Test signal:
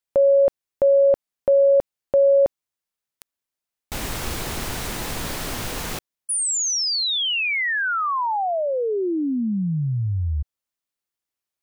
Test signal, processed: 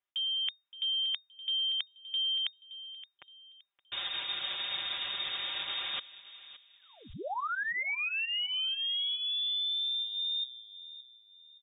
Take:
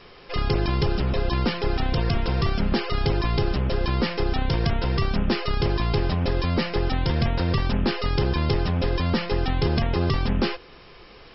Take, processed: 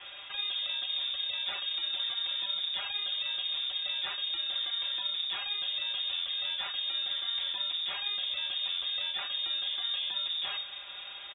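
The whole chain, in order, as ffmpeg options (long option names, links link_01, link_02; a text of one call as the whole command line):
ffmpeg -i in.wav -filter_complex "[0:a]aecho=1:1:4.8:0.86,areverse,acompressor=threshold=-30dB:ratio=12:attack=3.3:release=126:knee=1:detection=peak,areverse,asplit=2[link_01][link_02];[link_02]adelay=570,lowpass=frequency=1900:poles=1,volume=-15dB,asplit=2[link_03][link_04];[link_04]adelay=570,lowpass=frequency=1900:poles=1,volume=0.35,asplit=2[link_05][link_06];[link_06]adelay=570,lowpass=frequency=1900:poles=1,volume=0.35[link_07];[link_01][link_03][link_05][link_07]amix=inputs=4:normalize=0,lowpass=frequency=3100:width_type=q:width=0.5098,lowpass=frequency=3100:width_type=q:width=0.6013,lowpass=frequency=3100:width_type=q:width=0.9,lowpass=frequency=3100:width_type=q:width=2.563,afreqshift=-3700,volume=-1dB" out.wav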